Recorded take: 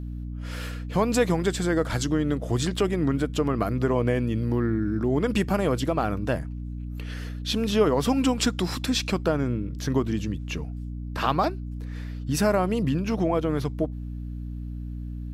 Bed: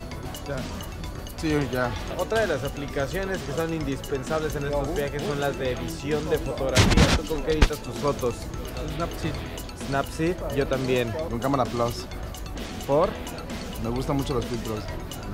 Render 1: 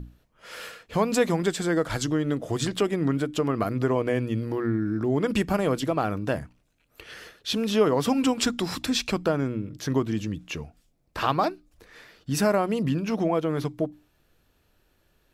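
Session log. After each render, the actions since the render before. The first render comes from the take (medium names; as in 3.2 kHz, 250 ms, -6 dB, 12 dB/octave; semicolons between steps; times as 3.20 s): hum notches 60/120/180/240/300 Hz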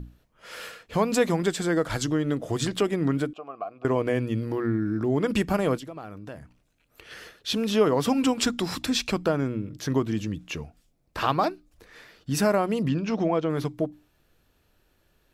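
3.33–3.85 s: vowel filter a; 5.77–7.11 s: compression 2:1, threshold -46 dBFS; 12.88–13.50 s: low-pass 6.7 kHz 24 dB/octave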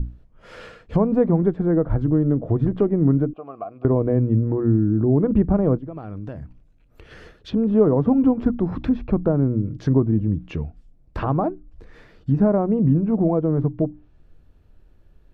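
low-pass that closes with the level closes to 980 Hz, closed at -24.5 dBFS; tilt EQ -3.5 dB/octave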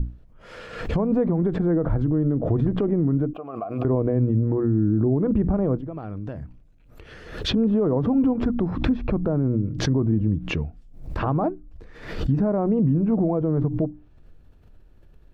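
peak limiter -13.5 dBFS, peak gain reduction 8.5 dB; swell ahead of each attack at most 77 dB/s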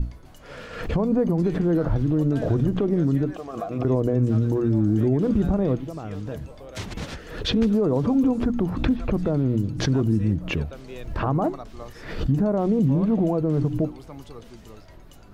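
add bed -15.5 dB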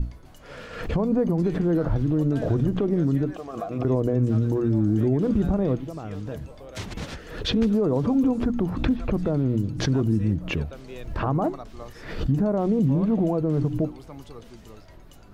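trim -1 dB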